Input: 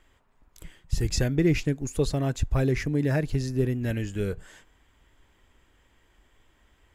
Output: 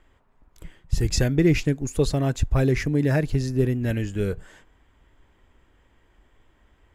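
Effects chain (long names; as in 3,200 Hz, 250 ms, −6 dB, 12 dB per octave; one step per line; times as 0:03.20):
one half of a high-frequency compander decoder only
level +3.5 dB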